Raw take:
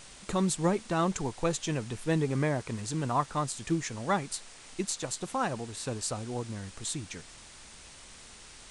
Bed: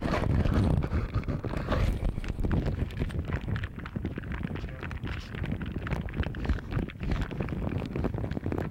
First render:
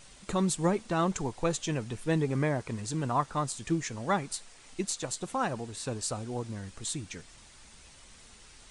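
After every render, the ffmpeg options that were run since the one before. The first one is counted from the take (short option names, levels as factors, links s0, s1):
-af "afftdn=nr=6:nf=-51"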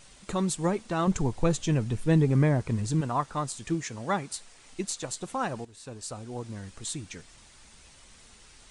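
-filter_complex "[0:a]asettb=1/sr,asplit=3[s0][s1][s2];[s0]atrim=end=1.074[s3];[s1]atrim=start=1.07:end=3.01,asetpts=PTS-STARTPTS,afade=t=in:d=0.004:c=qsin,afade=t=out:st=1.936:d=0.004:c=qsin,lowshelf=f=260:g=11[s4];[s2]atrim=start=3.006[s5];[s3][s4]acrossfade=d=0.004:c1=hsin:c2=qsin[s6];[s6][s5]acrossfade=d=0.004:c1=qsin:c2=hsin,asettb=1/sr,asplit=3[s7][s8][s9];[s7]atrim=end=3.744[s10];[s8]atrim=start=3.74:end=4.36,asetpts=PTS-STARTPTS,afade=t=in:d=0.004:c=qsin,afade=t=out:st=0.616:d=0.004:c=qsin,highpass=48[s11];[s9]atrim=start=4.356[s12];[s10][s11]acrossfade=d=0.004:c1=hsin:c2=qsin[s13];[s13][s12]acrossfade=d=0.004:c1=qsin:c2=hsin,asplit=2[s14][s15];[s14]atrim=end=5.65,asetpts=PTS-STARTPTS,afade=t=out:st=5.646:d=0.004:c=hsin:silence=0.237137[s16];[s15]atrim=start=5.65,asetpts=PTS-STARTPTS,afade=t=in:d=0.93:silence=0.237137[s17];[s16][s17]concat=n=2:v=0:a=1"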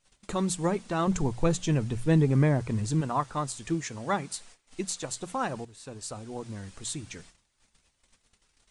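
-af "agate=range=0.0891:threshold=0.00316:ratio=16:detection=peak,bandreject=f=60:t=h:w=6,bandreject=f=120:t=h:w=6,bandreject=f=180:t=h:w=6"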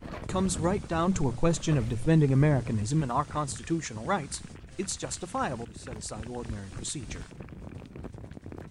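-filter_complex "[1:a]volume=0.282[s0];[0:a][s0]amix=inputs=2:normalize=0"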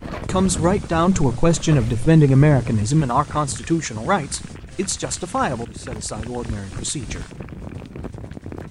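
-af "volume=2.99,alimiter=limit=0.708:level=0:latency=1"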